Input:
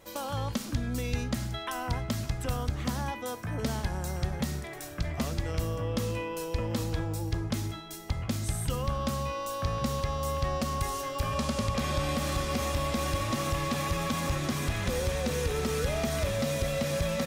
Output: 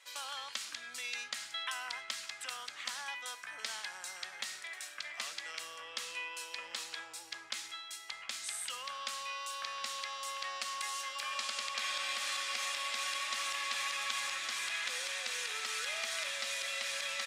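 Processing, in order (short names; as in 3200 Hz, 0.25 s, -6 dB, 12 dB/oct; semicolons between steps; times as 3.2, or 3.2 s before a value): Butterworth band-pass 3900 Hz, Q 0.56; bell 5900 Hz -3.5 dB 0.46 oct; gain +2.5 dB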